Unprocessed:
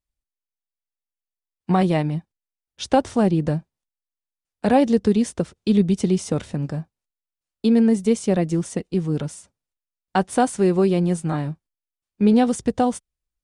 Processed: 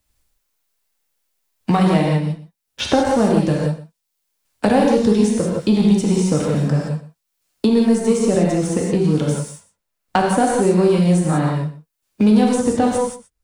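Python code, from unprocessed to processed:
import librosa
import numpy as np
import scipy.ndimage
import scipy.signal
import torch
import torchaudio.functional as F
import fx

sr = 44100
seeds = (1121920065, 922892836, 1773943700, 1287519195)

p1 = fx.high_shelf(x, sr, hz=6900.0, db=4.0)
p2 = fx.leveller(p1, sr, passes=1)
p3 = p2 + fx.echo_single(p2, sr, ms=122, db=-19.5, dry=0)
p4 = fx.rev_gated(p3, sr, seeds[0], gate_ms=200, shape='flat', drr_db=-2.5)
p5 = fx.band_squash(p4, sr, depth_pct=70)
y = F.gain(torch.from_numpy(p5), -3.0).numpy()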